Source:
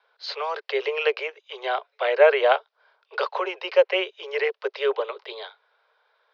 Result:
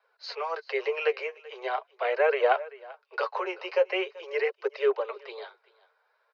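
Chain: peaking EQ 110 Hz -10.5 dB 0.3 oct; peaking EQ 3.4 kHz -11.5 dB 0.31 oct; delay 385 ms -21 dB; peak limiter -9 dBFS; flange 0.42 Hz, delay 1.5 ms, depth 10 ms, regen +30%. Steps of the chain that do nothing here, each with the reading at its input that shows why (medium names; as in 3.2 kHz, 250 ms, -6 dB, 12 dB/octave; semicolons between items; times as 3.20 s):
peaking EQ 110 Hz: input has nothing below 340 Hz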